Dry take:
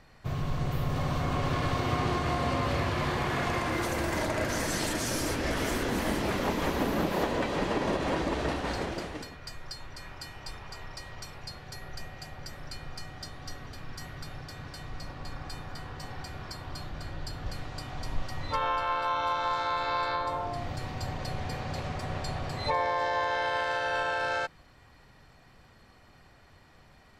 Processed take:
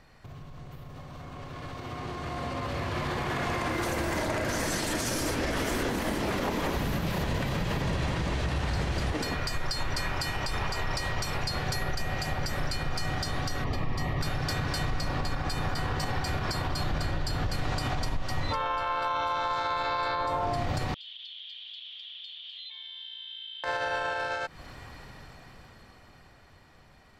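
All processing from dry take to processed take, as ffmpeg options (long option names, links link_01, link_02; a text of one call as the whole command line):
ffmpeg -i in.wav -filter_complex "[0:a]asettb=1/sr,asplit=3[link_01][link_02][link_03];[link_01]atrim=end=6.764[link_04];[link_02]atrim=start=6.76:end=9.12,asetpts=PTS-STARTPTS,afade=type=in:duration=0.004:curve=qsin,afade=type=out:start_time=2.356:duration=0.004:curve=qsin,lowshelf=frequency=190:width_type=q:width=1.5:gain=10,acrossover=split=310|1500[link_05][link_06][link_07];[link_05]acompressor=threshold=-33dB:ratio=4[link_08];[link_06]acompressor=threshold=-42dB:ratio=4[link_09];[link_07]acompressor=threshold=-42dB:ratio=4[link_10];[link_08][link_09][link_10]amix=inputs=3:normalize=0,aecho=1:1:582:0.422,atrim=end_sample=104076[link_11];[link_03]atrim=start=9.116[link_12];[link_04][link_11]acrossfade=duration=0.004:curve1=hsin:curve2=qsin[link_13];[link_13][link_12]acrossfade=duration=0.004:curve1=qsin:curve2=hsin,asettb=1/sr,asplit=3[link_14][link_15][link_16];[link_14]atrim=end=13.644[link_17];[link_15]atrim=start=13.64:end=14.21,asetpts=PTS-STARTPTS,afade=type=in:duration=0.004:curve=qsin,afade=type=out:start_time=0.566:duration=0.004:curve=qsin,asuperstop=centerf=1500:order=4:qfactor=4.2,equalizer=frequency=9700:width=0.37:gain=-14,asoftclip=type=hard:threshold=-32.5dB[link_18];[link_16]atrim=start=14.206[link_19];[link_17][link_18]acrossfade=duration=0.004:curve1=hsin:curve2=qsin[link_20];[link_20][link_19]acrossfade=duration=0.004:curve1=qsin:curve2=hsin,asettb=1/sr,asplit=3[link_21][link_22][link_23];[link_21]atrim=end=20.944[link_24];[link_22]atrim=start=20.94:end=23.64,asetpts=PTS-STARTPTS,afade=type=in:duration=0.004:curve=qsin,afade=type=out:start_time=2.696:duration=0.004:curve=qsin,asuperpass=centerf=3300:order=4:qfactor=6.2,acompressor=threshold=-55dB:ratio=6:attack=3.2:release=140:knee=1:detection=peak[link_25];[link_23]atrim=start=23.636[link_26];[link_24][link_25]acrossfade=duration=0.004:curve1=hsin:curve2=qsin[link_27];[link_27][link_26]acrossfade=duration=0.004:curve1=qsin:curve2=hsin,acompressor=threshold=-39dB:ratio=6,alimiter=level_in=12.5dB:limit=-24dB:level=0:latency=1:release=81,volume=-12.5dB,dynaudnorm=framelen=160:gausssize=31:maxgain=16dB" out.wav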